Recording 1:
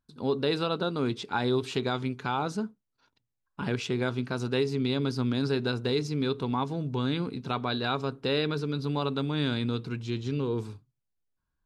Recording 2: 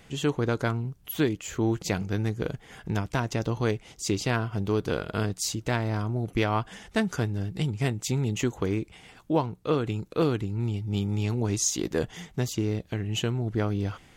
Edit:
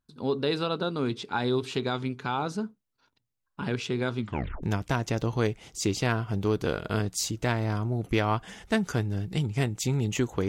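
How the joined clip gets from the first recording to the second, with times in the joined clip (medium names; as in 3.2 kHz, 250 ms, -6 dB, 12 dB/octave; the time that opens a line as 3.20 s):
recording 1
4.19 s: tape stop 0.44 s
4.63 s: go over to recording 2 from 2.87 s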